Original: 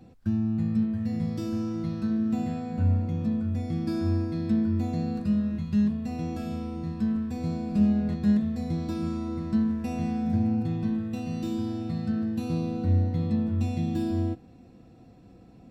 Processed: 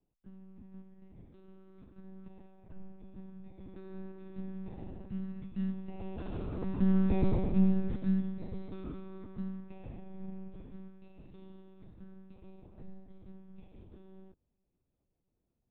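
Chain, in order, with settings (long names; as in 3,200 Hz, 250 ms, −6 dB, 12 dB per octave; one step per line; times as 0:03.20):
source passing by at 0:07.16, 10 m/s, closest 2.1 metres
leveller curve on the samples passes 1
one-pitch LPC vocoder at 8 kHz 190 Hz
level +3 dB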